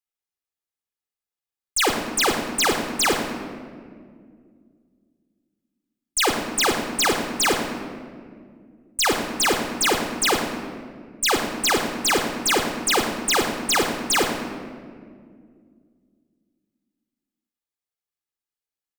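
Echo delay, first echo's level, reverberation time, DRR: 0.107 s, -13.0 dB, 2.1 s, 4.5 dB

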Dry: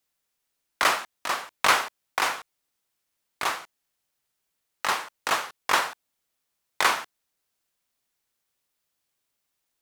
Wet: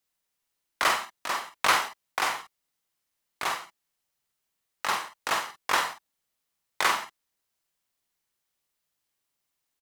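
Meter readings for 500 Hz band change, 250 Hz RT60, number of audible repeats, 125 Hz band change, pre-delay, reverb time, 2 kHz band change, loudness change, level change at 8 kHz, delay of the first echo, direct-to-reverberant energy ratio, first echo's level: -2.5 dB, none, 1, -1.5 dB, none, none, -2.0 dB, -2.0 dB, -2.0 dB, 47 ms, none, -6.5 dB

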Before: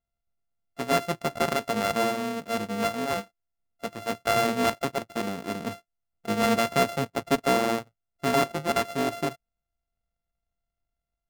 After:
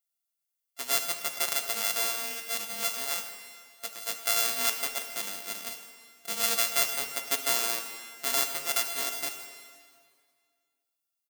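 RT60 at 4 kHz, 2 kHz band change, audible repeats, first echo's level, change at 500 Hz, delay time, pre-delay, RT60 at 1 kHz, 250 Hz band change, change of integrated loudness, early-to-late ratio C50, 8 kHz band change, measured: 1.9 s, -2.5 dB, 1, -17.0 dB, -13.5 dB, 0.16 s, 5 ms, 2.0 s, -20.5 dB, -1.0 dB, 7.0 dB, +9.0 dB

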